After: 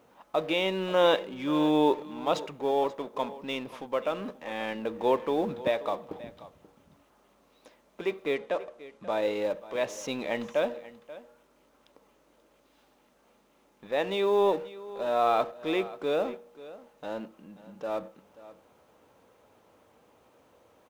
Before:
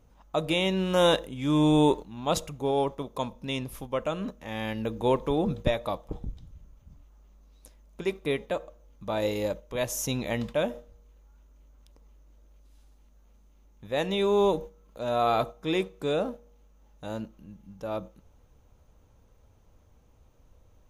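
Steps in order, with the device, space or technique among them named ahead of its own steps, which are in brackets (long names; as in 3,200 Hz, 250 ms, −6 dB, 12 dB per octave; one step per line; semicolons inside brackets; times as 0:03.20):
phone line with mismatched companding (band-pass filter 320–3,200 Hz; mu-law and A-law mismatch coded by mu)
0:08.35–0:09.11: low-pass filter 9,500 Hz 12 dB per octave
single-tap delay 534 ms −17.5 dB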